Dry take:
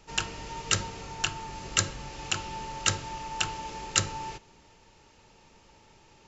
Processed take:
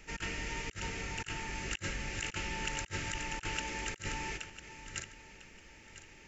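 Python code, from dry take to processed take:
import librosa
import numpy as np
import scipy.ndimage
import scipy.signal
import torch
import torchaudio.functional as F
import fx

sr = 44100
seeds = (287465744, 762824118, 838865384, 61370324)

y = fx.reverse_delay_fb(x, sr, ms=500, feedback_pct=47, wet_db=-13.0)
y = fx.graphic_eq_10(y, sr, hz=(125, 500, 1000, 2000, 4000), db=(-7, -4, -12, 10, -8))
y = fx.over_compress(y, sr, threshold_db=-38.0, ratio=-0.5)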